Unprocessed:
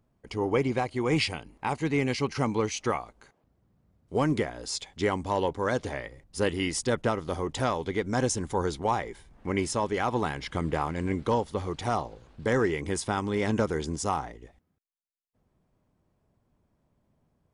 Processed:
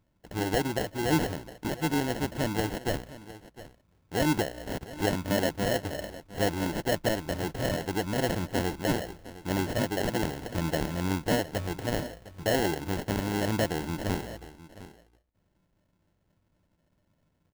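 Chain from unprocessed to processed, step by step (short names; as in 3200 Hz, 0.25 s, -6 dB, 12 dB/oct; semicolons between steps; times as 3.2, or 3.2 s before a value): ripple EQ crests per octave 1.2, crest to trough 7 dB; sample-rate reducer 1200 Hz, jitter 0%; echo 0.709 s -16.5 dB; gain -1.5 dB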